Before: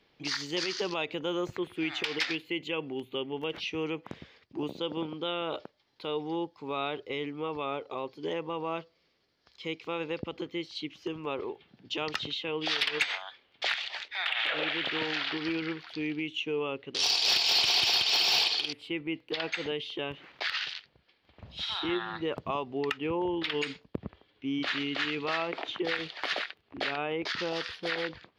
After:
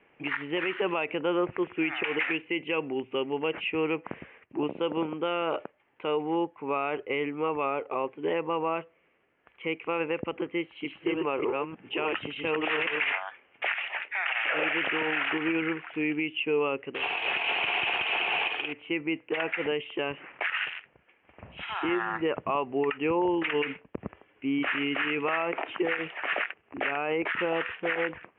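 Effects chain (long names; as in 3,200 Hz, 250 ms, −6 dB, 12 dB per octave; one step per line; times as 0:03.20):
0:10.54–0:13.12: delay that plays each chunk backwards 302 ms, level −2 dB
Butterworth low-pass 2,800 Hz 72 dB per octave
low-shelf EQ 180 Hz −10.5 dB
brickwall limiter −25 dBFS, peak gain reduction 8.5 dB
level +7 dB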